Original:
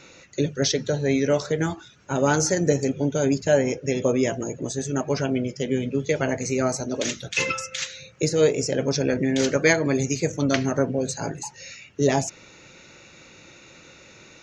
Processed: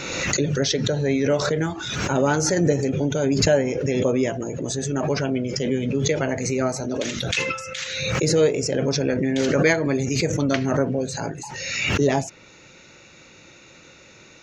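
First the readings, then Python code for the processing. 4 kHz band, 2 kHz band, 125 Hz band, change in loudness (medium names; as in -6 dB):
+4.0 dB, +2.0 dB, +3.0 dB, +1.5 dB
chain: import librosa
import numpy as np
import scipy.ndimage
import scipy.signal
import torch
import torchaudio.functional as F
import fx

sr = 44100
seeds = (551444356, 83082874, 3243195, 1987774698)

y = fx.dynamic_eq(x, sr, hz=6400.0, q=1.0, threshold_db=-43.0, ratio=4.0, max_db=-5)
y = fx.pre_swell(y, sr, db_per_s=34.0)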